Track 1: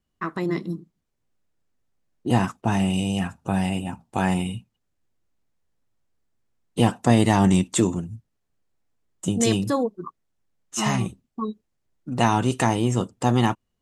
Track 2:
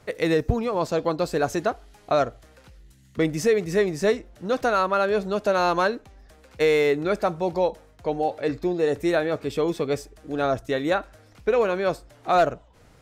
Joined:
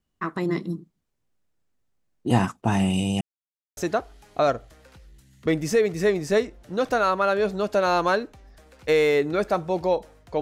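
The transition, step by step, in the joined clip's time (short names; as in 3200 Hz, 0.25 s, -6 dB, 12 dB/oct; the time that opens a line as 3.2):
track 1
3.21–3.77 mute
3.77 switch to track 2 from 1.49 s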